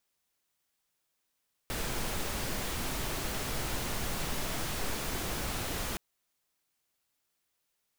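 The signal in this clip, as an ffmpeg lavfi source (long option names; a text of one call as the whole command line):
ffmpeg -f lavfi -i "anoisesrc=color=pink:amplitude=0.102:duration=4.27:sample_rate=44100:seed=1" out.wav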